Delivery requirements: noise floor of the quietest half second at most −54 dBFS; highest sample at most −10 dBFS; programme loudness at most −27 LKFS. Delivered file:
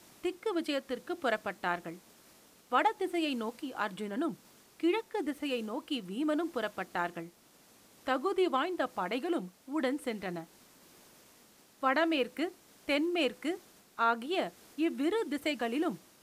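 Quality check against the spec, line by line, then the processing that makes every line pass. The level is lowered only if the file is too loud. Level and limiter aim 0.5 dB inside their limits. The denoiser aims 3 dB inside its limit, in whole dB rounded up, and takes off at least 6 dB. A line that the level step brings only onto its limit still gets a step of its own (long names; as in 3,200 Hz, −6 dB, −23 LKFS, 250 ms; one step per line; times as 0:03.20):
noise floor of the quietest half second −62 dBFS: in spec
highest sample −15.0 dBFS: in spec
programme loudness −33.5 LKFS: in spec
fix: no processing needed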